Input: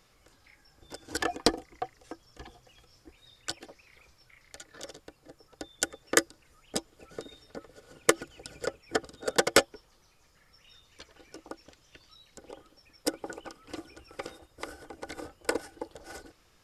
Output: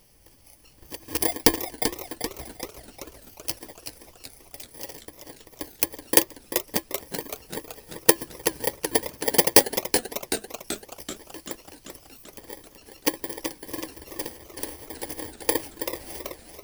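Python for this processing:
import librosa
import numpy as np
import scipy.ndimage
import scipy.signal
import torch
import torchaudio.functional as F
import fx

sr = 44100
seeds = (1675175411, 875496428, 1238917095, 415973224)

y = fx.bit_reversed(x, sr, seeds[0], block=32)
y = fx.echo_warbled(y, sr, ms=383, feedback_pct=60, rate_hz=2.8, cents=177, wet_db=-7.5)
y = F.gain(torch.from_numpy(y), 6.0).numpy()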